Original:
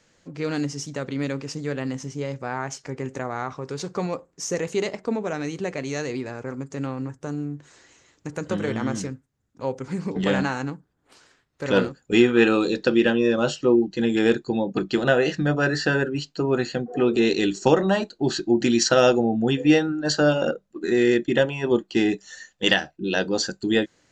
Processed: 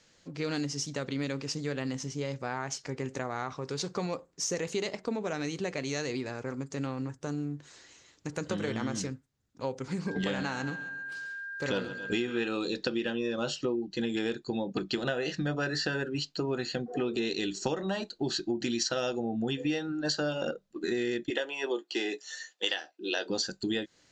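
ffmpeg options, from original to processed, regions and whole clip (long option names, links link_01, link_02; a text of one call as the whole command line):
ffmpeg -i in.wav -filter_complex "[0:a]asettb=1/sr,asplit=3[link_01][link_02][link_03];[link_01]atrim=end=10.074[link_04];[link_02]atrim=start=10.07:end=12.43,asetpts=PTS-STARTPTS,afade=type=in:duration=0.004:curve=qsin,afade=type=out:start_time=2.356:duration=0.004:curve=qsin,aeval=exprs='val(0)+0.0158*sin(2*PI*1600*n/s)':channel_layout=same,aecho=1:1:135|270|405|540:0.141|0.0706|0.0353|0.0177,atrim=end_sample=104076[link_05];[link_03]atrim=start=12.426[link_06];[link_04][link_05]acrossfade=duration=0.004:curve1=hsin:curve2=qsin[link_07];[link_07][link_06]acrossfade=duration=0.004:curve1=qsin:curve2=hsin,asettb=1/sr,asplit=3[link_08][link_09][link_10];[link_08]atrim=end=21.304[link_11];[link_09]atrim=start=21.3:end=23.3,asetpts=PTS-STARTPTS,afade=type=in:duration=0.004:curve=qsin,afade=type=out:start_time=1.996:duration=0.004:curve=qsin,highpass=frequency=340:width=0.5412,highpass=frequency=340:width=1.3066,asplit=2[link_12][link_13];[link_13]adelay=14,volume=-10.5dB[link_14];[link_12][link_14]amix=inputs=2:normalize=0,atrim=end_sample=88200[link_15];[link_10]atrim=start=23.296[link_16];[link_11][link_15]acrossfade=duration=0.004:curve1=hsin:curve2=qsin[link_17];[link_17][link_16]acrossfade=duration=0.004:curve1=qsin:curve2=hsin,equalizer=frequency=4300:width_type=o:width=1.4:gain=6.5,acompressor=threshold=-24dB:ratio=6,volume=-4dB" out.wav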